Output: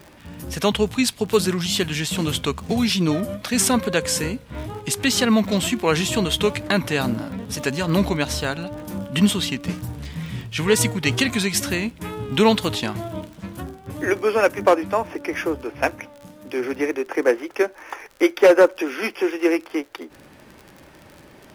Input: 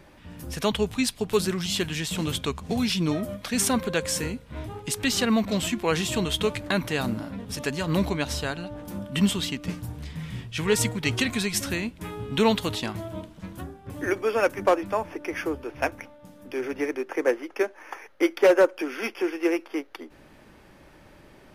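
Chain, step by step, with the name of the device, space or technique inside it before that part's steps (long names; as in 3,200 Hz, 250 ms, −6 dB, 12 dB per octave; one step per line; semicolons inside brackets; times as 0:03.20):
high-pass filter 62 Hz
vinyl LP (tape wow and flutter; surface crackle 47 per second −37 dBFS; pink noise bed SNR 43 dB)
level +5 dB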